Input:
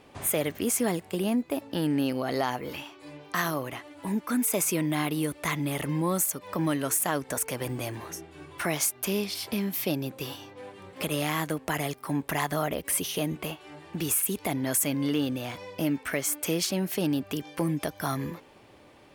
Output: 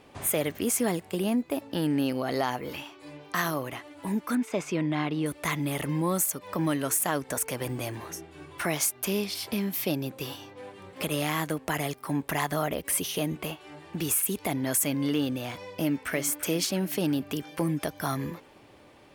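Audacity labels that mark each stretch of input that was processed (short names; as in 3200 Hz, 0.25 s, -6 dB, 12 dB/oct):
4.350000	5.260000	air absorption 160 m
15.580000	16.130000	echo throw 0.34 s, feedback 65%, level -13.5 dB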